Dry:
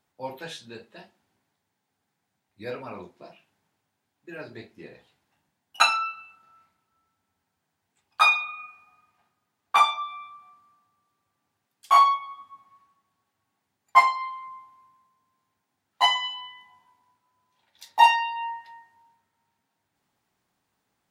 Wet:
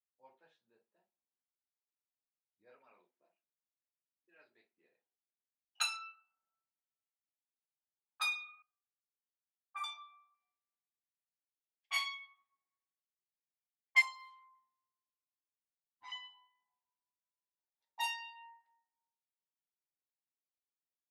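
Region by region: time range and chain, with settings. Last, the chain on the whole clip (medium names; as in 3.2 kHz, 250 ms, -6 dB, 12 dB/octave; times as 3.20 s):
2.79–5.81 s: frequency weighting D + level-controlled noise filter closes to 360 Hz, open at -36 dBFS
8.62–9.84 s: high-order bell 4.4 kHz -16 dB 1.3 oct + feedback comb 390 Hz, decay 0.17 s, mix 90% + three bands expanded up and down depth 40%
10.34–14.02 s: low-pass 3.8 kHz 6 dB/octave + resonant high shelf 1.6 kHz +8.5 dB, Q 3
14.55–16.12 s: comb filter that takes the minimum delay 0.83 ms + slow attack 117 ms + distance through air 75 m
whole clip: level-controlled noise filter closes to 500 Hz, open at -17.5 dBFS; differentiator; trim -6.5 dB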